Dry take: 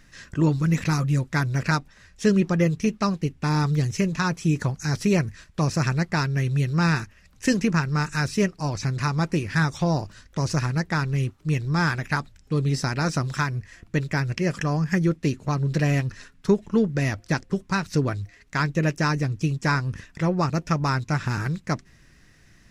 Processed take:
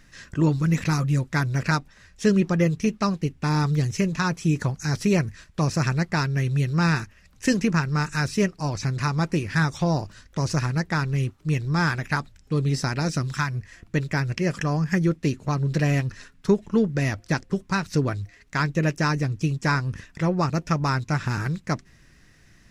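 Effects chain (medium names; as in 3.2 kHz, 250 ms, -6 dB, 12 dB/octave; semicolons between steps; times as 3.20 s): 12.99–13.53 s: peaking EQ 1.5 kHz -> 330 Hz -9 dB 0.93 oct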